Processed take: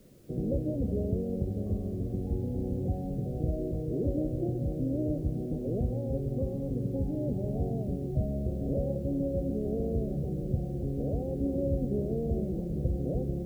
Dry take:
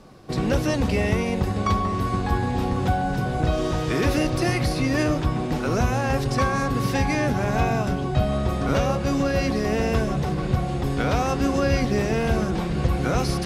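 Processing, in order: steep low-pass 600 Hz 48 dB/octave; word length cut 10-bit, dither triangular; trim -7.5 dB

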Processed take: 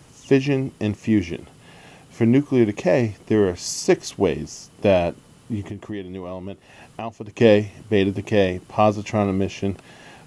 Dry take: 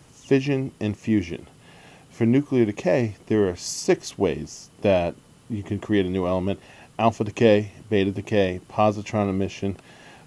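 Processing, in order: 5.62–7.40 s: compression 3:1, threshold -35 dBFS, peak gain reduction 16 dB; trim +2.5 dB

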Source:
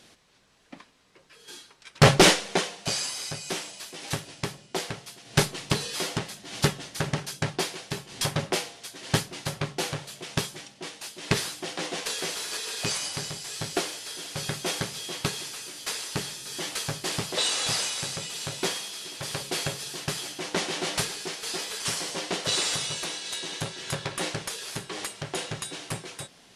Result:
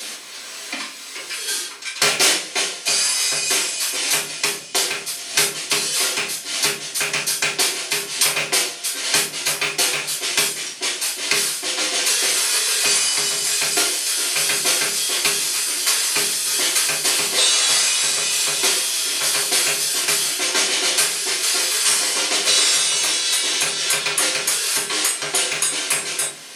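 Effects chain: rattle on loud lows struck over -27 dBFS, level -18 dBFS; Bessel high-pass 300 Hz, order 2; tilt EQ +3.5 dB/octave; level rider gain up to 5 dB; reverberation RT60 0.35 s, pre-delay 3 ms, DRR -6 dB; three bands compressed up and down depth 70%; trim -6 dB

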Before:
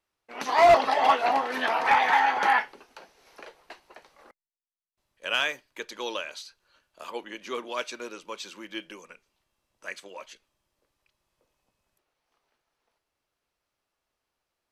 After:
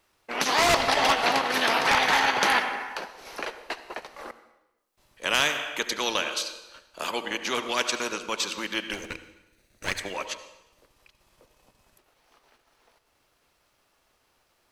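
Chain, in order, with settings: 8.93–9.99 s: comb filter that takes the minimum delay 0.48 ms; transient shaper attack -2 dB, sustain -8 dB; on a send at -13 dB: reverberation RT60 1.0 s, pre-delay 66 ms; on the sum: spectrum-flattening compressor 2:1; trim +7 dB

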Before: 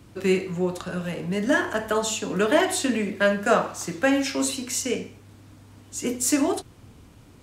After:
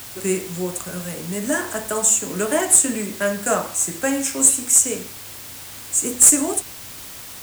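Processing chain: resonant high shelf 6 kHz +12 dB, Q 3; one-sided clip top -5 dBFS, bottom -1.5 dBFS; word length cut 6-bit, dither triangular; trim -1 dB

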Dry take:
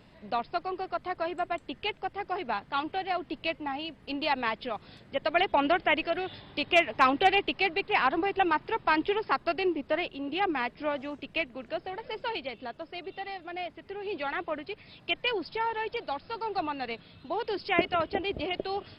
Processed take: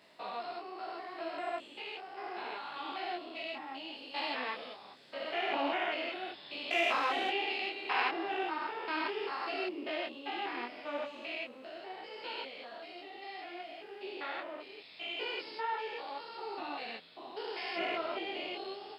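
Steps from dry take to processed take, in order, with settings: spectrogram pixelated in time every 200 ms; high-pass 350 Hz 12 dB/octave; treble shelf 3.9 kHz +9.5 dB; detune thickener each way 25 cents; trim +1 dB

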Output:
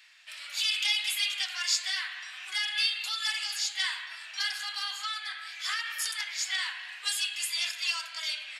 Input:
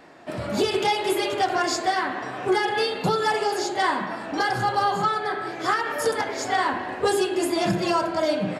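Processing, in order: ladder high-pass 2.1 kHz, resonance 30%; trim +7.5 dB

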